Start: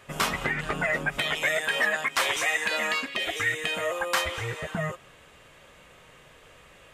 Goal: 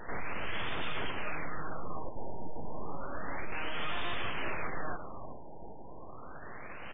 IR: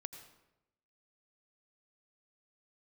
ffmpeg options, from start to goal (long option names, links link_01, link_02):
-af "equalizer=frequency=980:width=0.69:gain=5.5,alimiter=limit=-16.5dB:level=0:latency=1:release=471,aresample=16000,asoftclip=type=tanh:threshold=-36.5dB,aresample=44100,aecho=1:1:390|780|1170|1560:0.282|0.116|0.0474|0.0194,aeval=exprs='abs(val(0))':channel_layout=same,afftfilt=real='re*lt(b*sr/1024,950*pow(3700/950,0.5+0.5*sin(2*PI*0.31*pts/sr)))':imag='im*lt(b*sr/1024,950*pow(3700/950,0.5+0.5*sin(2*PI*0.31*pts/sr)))':win_size=1024:overlap=0.75,volume=9.5dB"